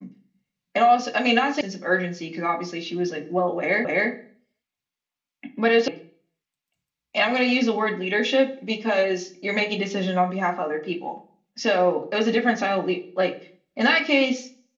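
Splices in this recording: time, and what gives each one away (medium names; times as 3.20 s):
1.61 s: sound stops dead
3.85 s: repeat of the last 0.26 s
5.88 s: sound stops dead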